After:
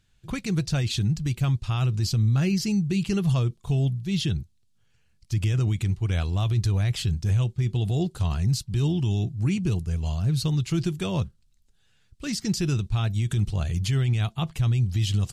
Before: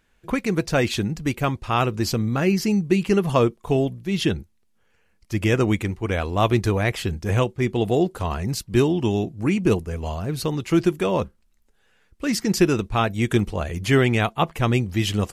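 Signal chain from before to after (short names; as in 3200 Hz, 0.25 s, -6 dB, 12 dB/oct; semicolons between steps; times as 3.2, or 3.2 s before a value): ten-band EQ 125 Hz +10 dB, 250 Hz -7 dB, 500 Hz -10 dB, 1000 Hz -7 dB, 2000 Hz -7 dB, 4000 Hz +6 dB, 8000 Hz +6 dB; limiter -16 dBFS, peak gain reduction 11.5 dB; high shelf 4900 Hz -8 dB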